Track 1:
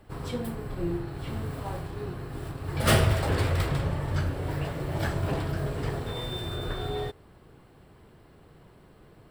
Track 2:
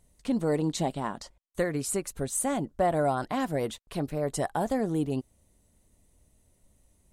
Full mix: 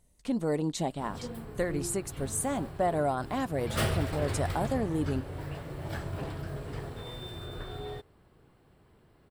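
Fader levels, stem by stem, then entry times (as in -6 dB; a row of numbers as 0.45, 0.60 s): -7.5, -2.5 dB; 0.90, 0.00 s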